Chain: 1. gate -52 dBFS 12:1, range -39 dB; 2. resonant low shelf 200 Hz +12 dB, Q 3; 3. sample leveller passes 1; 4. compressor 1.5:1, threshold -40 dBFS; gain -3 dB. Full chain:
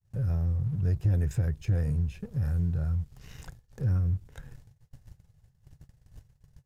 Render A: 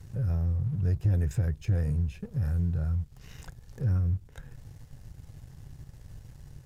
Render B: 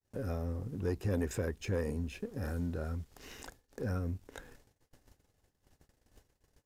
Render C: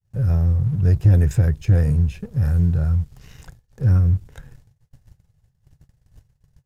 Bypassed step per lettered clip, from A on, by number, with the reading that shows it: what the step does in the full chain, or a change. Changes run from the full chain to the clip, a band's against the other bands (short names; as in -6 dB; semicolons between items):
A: 1, momentary loudness spread change +13 LU; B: 2, 125 Hz band -15.0 dB; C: 4, mean gain reduction 8.0 dB